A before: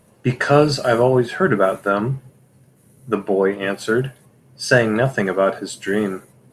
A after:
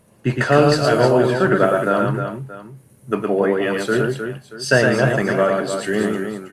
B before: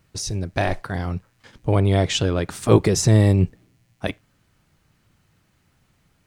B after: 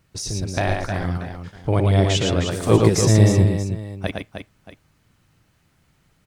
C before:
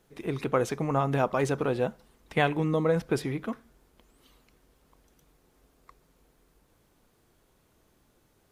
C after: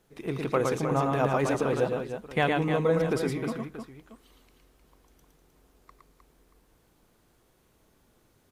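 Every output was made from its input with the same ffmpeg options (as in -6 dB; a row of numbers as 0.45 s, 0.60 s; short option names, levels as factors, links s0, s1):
-af "aecho=1:1:95|113|309|631:0.106|0.668|0.422|0.15,volume=0.891"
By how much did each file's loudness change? +1.0 LU, +1.0 LU, +1.0 LU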